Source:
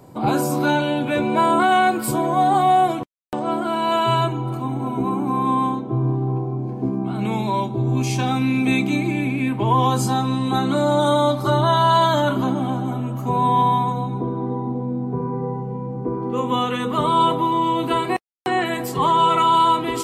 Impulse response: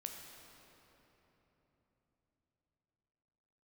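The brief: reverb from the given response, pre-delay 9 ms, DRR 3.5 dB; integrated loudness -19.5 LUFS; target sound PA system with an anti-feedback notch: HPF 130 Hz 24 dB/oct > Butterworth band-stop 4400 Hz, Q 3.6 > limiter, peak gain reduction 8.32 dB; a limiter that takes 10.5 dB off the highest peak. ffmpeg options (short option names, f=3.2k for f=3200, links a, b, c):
-filter_complex "[0:a]alimiter=limit=-18dB:level=0:latency=1,asplit=2[a][b];[1:a]atrim=start_sample=2205,adelay=9[c];[b][c]afir=irnorm=-1:irlink=0,volume=-1dB[d];[a][d]amix=inputs=2:normalize=0,highpass=f=130:w=0.5412,highpass=f=130:w=1.3066,asuperstop=centerf=4400:order=8:qfactor=3.6,volume=9dB,alimiter=limit=-11.5dB:level=0:latency=1"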